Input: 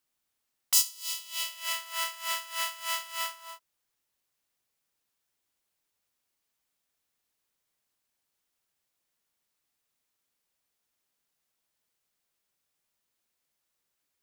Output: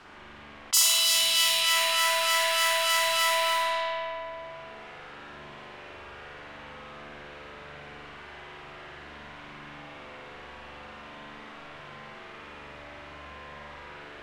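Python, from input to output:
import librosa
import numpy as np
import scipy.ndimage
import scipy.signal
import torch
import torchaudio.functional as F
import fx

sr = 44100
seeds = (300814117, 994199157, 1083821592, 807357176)

p1 = fx.law_mismatch(x, sr, coded='mu')
p2 = fx.high_shelf(p1, sr, hz=8900.0, db=-7.5)
p3 = fx.rev_spring(p2, sr, rt60_s=1.6, pass_ms=(41,), chirp_ms=55, drr_db=-7.5)
p4 = fx.rider(p3, sr, range_db=10, speed_s=0.5)
p5 = p4 + fx.room_flutter(p4, sr, wall_m=9.4, rt60_s=0.86, dry=0)
p6 = fx.env_lowpass(p5, sr, base_hz=1500.0, full_db=-26.5)
p7 = fx.high_shelf(p6, sr, hz=2000.0, db=9.0)
p8 = fx.env_flatten(p7, sr, amount_pct=50)
y = p8 * 10.0 ** (-5.0 / 20.0)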